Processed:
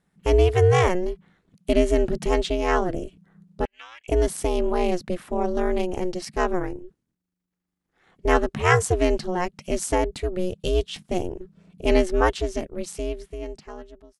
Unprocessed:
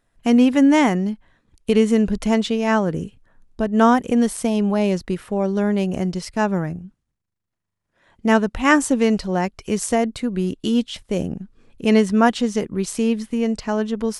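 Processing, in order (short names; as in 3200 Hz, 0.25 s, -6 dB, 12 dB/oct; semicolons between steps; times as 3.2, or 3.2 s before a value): ending faded out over 2.27 s; 3.65–4.08 ladder band-pass 2600 Hz, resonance 80%; ring modulator 180 Hz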